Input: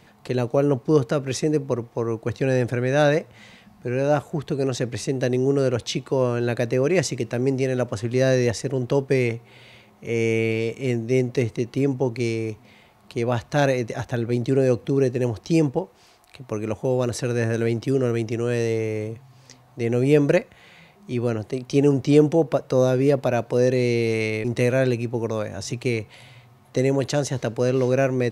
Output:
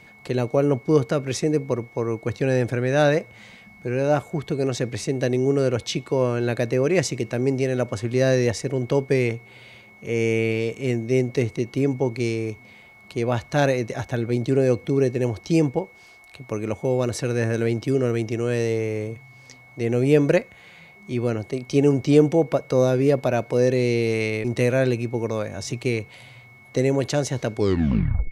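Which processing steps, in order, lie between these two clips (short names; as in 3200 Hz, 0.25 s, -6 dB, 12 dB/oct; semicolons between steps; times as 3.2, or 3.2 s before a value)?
tape stop at the end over 0.81 s; whine 2200 Hz -48 dBFS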